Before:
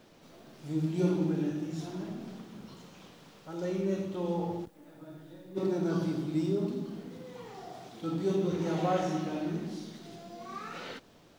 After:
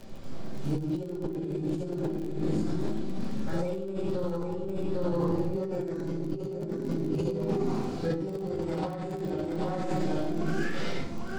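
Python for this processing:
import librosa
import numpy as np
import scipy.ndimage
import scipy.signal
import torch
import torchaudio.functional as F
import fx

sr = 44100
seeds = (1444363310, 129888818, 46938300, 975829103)

p1 = fx.riaa(x, sr, side='playback')
p2 = p1 + fx.echo_single(p1, sr, ms=801, db=-3.5, dry=0)
p3 = fx.formant_shift(p2, sr, semitones=4)
p4 = fx.high_shelf(p3, sr, hz=2500.0, db=10.0)
p5 = fx.room_shoebox(p4, sr, seeds[0], volume_m3=77.0, walls='mixed', distance_m=1.1)
p6 = fx.over_compress(p5, sr, threshold_db=-24.0, ratio=-1.0)
p7 = fx.dmg_crackle(p6, sr, seeds[1], per_s=29.0, level_db=-31.0)
y = p7 * 10.0 ** (-6.0 / 20.0)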